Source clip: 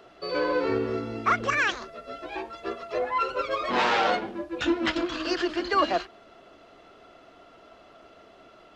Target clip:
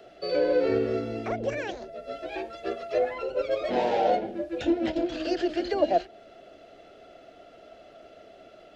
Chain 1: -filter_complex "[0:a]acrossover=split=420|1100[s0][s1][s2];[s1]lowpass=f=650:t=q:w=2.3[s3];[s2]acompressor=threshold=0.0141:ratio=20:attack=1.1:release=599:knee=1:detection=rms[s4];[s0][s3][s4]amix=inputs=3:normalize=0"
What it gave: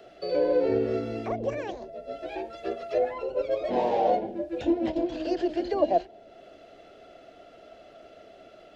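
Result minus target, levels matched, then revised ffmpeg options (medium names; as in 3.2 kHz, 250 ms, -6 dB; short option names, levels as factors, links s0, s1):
compression: peak gain reduction +5.5 dB
-filter_complex "[0:a]acrossover=split=420|1100[s0][s1][s2];[s1]lowpass=f=650:t=q:w=2.3[s3];[s2]acompressor=threshold=0.0282:ratio=20:attack=1.1:release=599:knee=1:detection=rms[s4];[s0][s3][s4]amix=inputs=3:normalize=0"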